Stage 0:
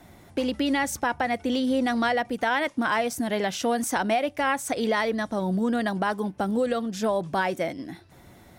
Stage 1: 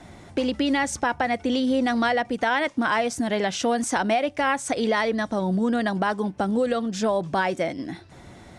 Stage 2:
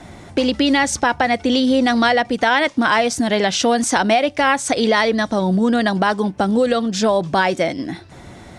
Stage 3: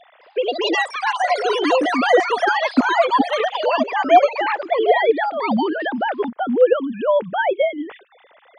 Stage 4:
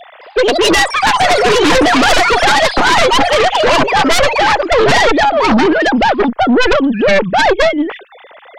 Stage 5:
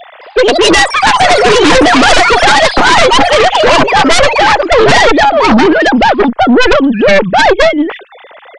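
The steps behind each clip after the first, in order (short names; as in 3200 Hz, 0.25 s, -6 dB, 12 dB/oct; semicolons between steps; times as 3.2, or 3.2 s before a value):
LPF 9000 Hz 24 dB/oct; in parallel at -1 dB: compressor, threshold -34 dBFS, peak gain reduction 13.5 dB
dynamic EQ 4300 Hz, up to +5 dB, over -47 dBFS, Q 1.2; gain +6.5 dB
sine-wave speech; echoes that change speed 0.214 s, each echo +6 st, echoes 3, each echo -6 dB; gain -2 dB
tube stage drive 13 dB, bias 0.75; sine folder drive 11 dB, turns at -9.5 dBFS; gain +3 dB
downsampling 22050 Hz; gain +4 dB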